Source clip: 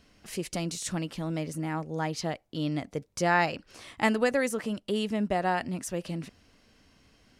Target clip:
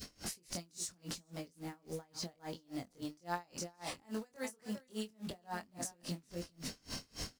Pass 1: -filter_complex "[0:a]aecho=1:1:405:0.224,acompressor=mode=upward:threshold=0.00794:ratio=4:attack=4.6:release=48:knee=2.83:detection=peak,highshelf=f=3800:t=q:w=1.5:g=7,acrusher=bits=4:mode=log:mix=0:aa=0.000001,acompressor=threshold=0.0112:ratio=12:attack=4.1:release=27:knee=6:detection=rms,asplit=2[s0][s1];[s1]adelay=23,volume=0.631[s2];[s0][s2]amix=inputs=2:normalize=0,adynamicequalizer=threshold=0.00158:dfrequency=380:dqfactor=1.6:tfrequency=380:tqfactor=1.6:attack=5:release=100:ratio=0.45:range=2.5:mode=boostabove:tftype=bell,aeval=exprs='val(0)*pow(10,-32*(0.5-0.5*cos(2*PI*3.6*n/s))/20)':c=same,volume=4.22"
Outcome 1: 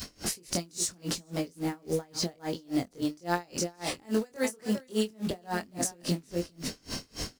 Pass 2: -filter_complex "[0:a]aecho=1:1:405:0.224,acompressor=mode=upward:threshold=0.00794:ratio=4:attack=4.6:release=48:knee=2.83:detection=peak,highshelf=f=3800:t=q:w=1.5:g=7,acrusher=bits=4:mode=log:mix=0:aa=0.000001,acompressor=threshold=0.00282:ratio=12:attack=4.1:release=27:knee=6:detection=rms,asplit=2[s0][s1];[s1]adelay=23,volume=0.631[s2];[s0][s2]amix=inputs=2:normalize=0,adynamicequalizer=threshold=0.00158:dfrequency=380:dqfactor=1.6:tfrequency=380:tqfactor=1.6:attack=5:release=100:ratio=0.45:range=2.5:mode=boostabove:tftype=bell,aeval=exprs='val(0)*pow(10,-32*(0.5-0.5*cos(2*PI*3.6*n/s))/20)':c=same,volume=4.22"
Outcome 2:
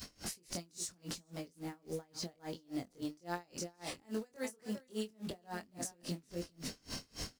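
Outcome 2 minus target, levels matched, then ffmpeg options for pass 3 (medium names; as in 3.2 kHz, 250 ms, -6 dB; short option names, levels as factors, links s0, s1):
1 kHz band -3.0 dB
-filter_complex "[0:a]aecho=1:1:405:0.224,acompressor=mode=upward:threshold=0.00794:ratio=4:attack=4.6:release=48:knee=2.83:detection=peak,highshelf=f=3800:t=q:w=1.5:g=7,acrusher=bits=4:mode=log:mix=0:aa=0.000001,acompressor=threshold=0.00282:ratio=12:attack=4.1:release=27:knee=6:detection=rms,asplit=2[s0][s1];[s1]adelay=23,volume=0.631[s2];[s0][s2]amix=inputs=2:normalize=0,adynamicequalizer=threshold=0.00158:dfrequency=960:dqfactor=1.6:tfrequency=960:tqfactor=1.6:attack=5:release=100:ratio=0.45:range=2.5:mode=boostabove:tftype=bell,aeval=exprs='val(0)*pow(10,-32*(0.5-0.5*cos(2*PI*3.6*n/s))/20)':c=same,volume=4.22"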